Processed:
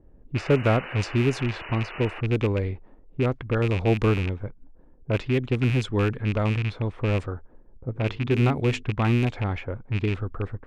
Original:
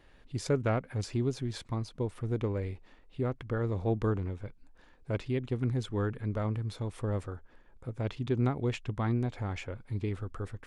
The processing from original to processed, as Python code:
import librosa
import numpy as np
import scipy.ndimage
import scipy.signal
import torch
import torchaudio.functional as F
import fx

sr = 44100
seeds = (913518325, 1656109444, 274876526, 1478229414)

y = fx.rattle_buzz(x, sr, strikes_db=-32.0, level_db=-29.0)
y = fx.env_lowpass(y, sr, base_hz=370.0, full_db=-26.0)
y = fx.spec_paint(y, sr, seeds[0], shape='noise', start_s=0.36, length_s=1.85, low_hz=310.0, high_hz=3000.0, level_db=-47.0)
y = fx.hum_notches(y, sr, base_hz=50, count=9, at=(7.94, 8.82), fade=0.02)
y = F.gain(torch.from_numpy(y), 8.0).numpy()